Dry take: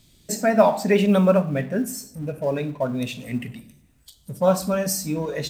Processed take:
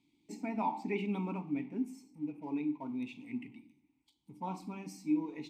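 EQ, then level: vowel filter u; high shelf 3800 Hz +6.5 dB; -1.5 dB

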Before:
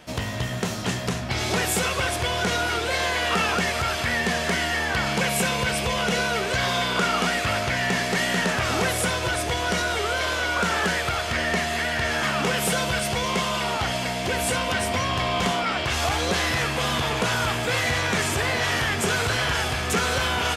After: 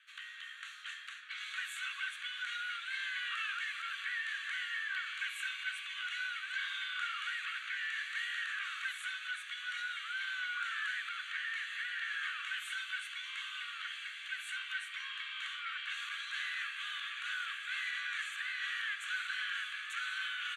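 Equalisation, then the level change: rippled Chebyshev high-pass 1100 Hz, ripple 6 dB; air absorption 75 m; fixed phaser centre 2200 Hz, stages 4; -6.0 dB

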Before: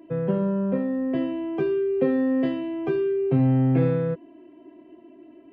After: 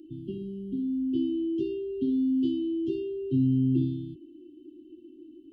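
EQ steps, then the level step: brick-wall FIR band-stop 380–2700 Hz; low shelf 360 Hz +3 dB; fixed phaser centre 420 Hz, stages 4; 0.0 dB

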